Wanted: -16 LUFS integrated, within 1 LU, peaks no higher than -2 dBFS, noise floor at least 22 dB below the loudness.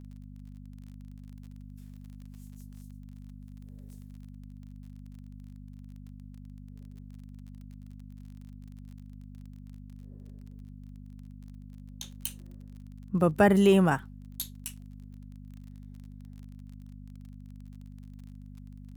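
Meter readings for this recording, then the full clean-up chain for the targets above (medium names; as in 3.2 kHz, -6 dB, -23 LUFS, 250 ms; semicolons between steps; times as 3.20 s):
tick rate 31 per s; hum 50 Hz; highest harmonic 250 Hz; hum level -43 dBFS; loudness -27.0 LUFS; peak level -11.0 dBFS; loudness target -16.0 LUFS
-> de-click; de-hum 50 Hz, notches 5; trim +11 dB; peak limiter -2 dBFS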